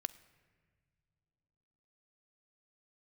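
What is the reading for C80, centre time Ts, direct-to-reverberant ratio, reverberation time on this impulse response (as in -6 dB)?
19.0 dB, 4 ms, 13.0 dB, not exponential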